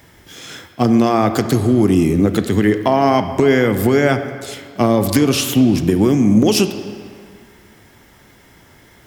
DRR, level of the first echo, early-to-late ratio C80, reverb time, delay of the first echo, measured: 8.5 dB, no echo audible, 10.5 dB, 2.2 s, no echo audible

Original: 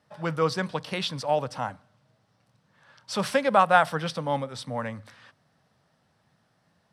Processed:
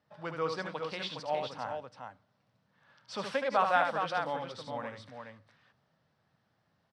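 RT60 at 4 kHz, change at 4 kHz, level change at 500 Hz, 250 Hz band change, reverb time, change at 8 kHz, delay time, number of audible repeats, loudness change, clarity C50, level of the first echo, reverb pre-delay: no reverb audible, −7.5 dB, −7.0 dB, −11.0 dB, no reverb audible, −13.0 dB, 74 ms, 2, −7.0 dB, no reverb audible, −6.0 dB, no reverb audible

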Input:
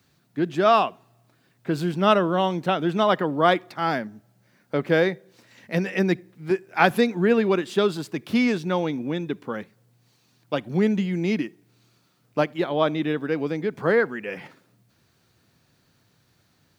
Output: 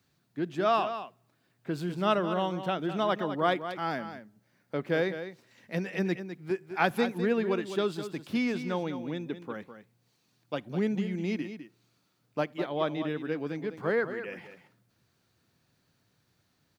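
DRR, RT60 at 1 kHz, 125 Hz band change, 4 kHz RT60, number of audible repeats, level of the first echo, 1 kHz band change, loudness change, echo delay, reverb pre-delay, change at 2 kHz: no reverb audible, no reverb audible, −7.5 dB, no reverb audible, 1, −10.5 dB, −7.5 dB, −7.5 dB, 204 ms, no reverb audible, −7.5 dB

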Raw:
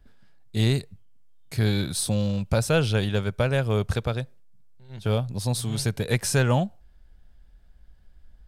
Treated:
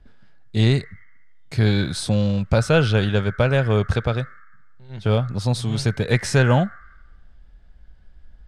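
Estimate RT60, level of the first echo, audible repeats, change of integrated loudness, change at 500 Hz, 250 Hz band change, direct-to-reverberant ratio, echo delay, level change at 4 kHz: 1.1 s, no echo audible, no echo audible, +4.5 dB, +5.0 dB, +5.0 dB, 11.0 dB, no echo audible, +3.0 dB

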